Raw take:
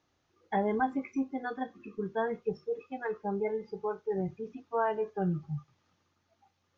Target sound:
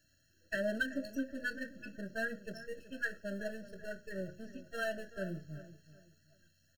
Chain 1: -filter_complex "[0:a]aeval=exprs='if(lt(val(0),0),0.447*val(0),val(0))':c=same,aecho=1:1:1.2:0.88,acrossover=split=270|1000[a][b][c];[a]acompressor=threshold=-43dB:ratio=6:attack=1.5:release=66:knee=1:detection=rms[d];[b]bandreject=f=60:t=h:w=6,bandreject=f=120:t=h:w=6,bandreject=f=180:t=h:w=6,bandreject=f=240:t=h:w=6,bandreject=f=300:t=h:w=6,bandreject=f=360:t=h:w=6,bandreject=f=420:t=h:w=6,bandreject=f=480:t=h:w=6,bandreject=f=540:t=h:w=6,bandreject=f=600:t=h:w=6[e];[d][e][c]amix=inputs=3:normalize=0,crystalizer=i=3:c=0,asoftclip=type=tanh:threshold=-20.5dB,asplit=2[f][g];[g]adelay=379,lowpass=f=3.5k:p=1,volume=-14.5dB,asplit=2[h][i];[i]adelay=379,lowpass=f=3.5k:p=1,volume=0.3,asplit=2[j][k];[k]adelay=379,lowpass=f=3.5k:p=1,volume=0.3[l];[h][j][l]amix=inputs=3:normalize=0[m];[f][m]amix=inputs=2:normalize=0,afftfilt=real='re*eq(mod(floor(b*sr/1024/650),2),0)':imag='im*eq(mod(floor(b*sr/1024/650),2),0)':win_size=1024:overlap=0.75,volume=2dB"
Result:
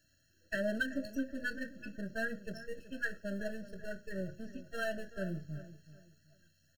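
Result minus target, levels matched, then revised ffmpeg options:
compressor: peak gain reduction -6 dB
-filter_complex "[0:a]aeval=exprs='if(lt(val(0),0),0.447*val(0),val(0))':c=same,aecho=1:1:1.2:0.88,acrossover=split=270|1000[a][b][c];[a]acompressor=threshold=-50dB:ratio=6:attack=1.5:release=66:knee=1:detection=rms[d];[b]bandreject=f=60:t=h:w=6,bandreject=f=120:t=h:w=6,bandreject=f=180:t=h:w=6,bandreject=f=240:t=h:w=6,bandreject=f=300:t=h:w=6,bandreject=f=360:t=h:w=6,bandreject=f=420:t=h:w=6,bandreject=f=480:t=h:w=6,bandreject=f=540:t=h:w=6,bandreject=f=600:t=h:w=6[e];[d][e][c]amix=inputs=3:normalize=0,crystalizer=i=3:c=0,asoftclip=type=tanh:threshold=-20.5dB,asplit=2[f][g];[g]adelay=379,lowpass=f=3.5k:p=1,volume=-14.5dB,asplit=2[h][i];[i]adelay=379,lowpass=f=3.5k:p=1,volume=0.3,asplit=2[j][k];[k]adelay=379,lowpass=f=3.5k:p=1,volume=0.3[l];[h][j][l]amix=inputs=3:normalize=0[m];[f][m]amix=inputs=2:normalize=0,afftfilt=real='re*eq(mod(floor(b*sr/1024/650),2),0)':imag='im*eq(mod(floor(b*sr/1024/650),2),0)':win_size=1024:overlap=0.75,volume=2dB"

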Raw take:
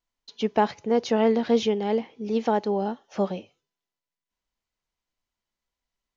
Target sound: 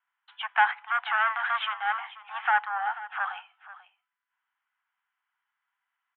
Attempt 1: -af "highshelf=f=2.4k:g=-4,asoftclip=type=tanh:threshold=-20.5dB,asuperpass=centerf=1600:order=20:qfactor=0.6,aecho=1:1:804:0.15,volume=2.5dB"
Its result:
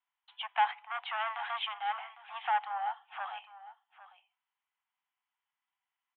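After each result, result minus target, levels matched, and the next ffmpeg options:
echo 0.317 s late; 2000 Hz band -5.0 dB
-af "highshelf=f=2.4k:g=-4,asoftclip=type=tanh:threshold=-20.5dB,asuperpass=centerf=1600:order=20:qfactor=0.6,aecho=1:1:487:0.15,volume=2.5dB"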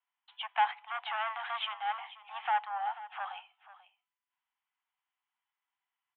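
2000 Hz band -5.0 dB
-af "highshelf=f=2.4k:g=-4,asoftclip=type=tanh:threshold=-20.5dB,asuperpass=centerf=1600:order=20:qfactor=0.6,equalizer=f=1.5k:w=1.5:g=14.5,aecho=1:1:487:0.15,volume=2.5dB"

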